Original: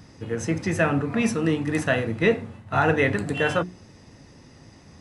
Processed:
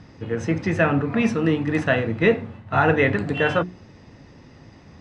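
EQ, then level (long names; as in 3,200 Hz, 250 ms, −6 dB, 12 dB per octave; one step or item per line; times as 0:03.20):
low-pass filter 3,900 Hz 12 dB per octave
+2.5 dB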